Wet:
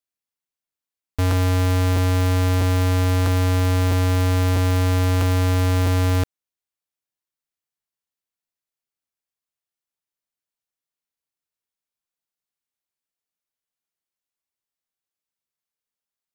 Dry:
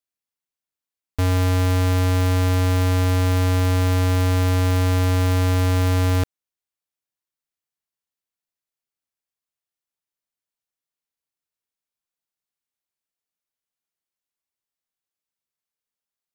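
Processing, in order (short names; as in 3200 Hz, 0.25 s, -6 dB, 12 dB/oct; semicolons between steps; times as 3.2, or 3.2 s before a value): crackling interface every 0.65 s repeat, from 0.65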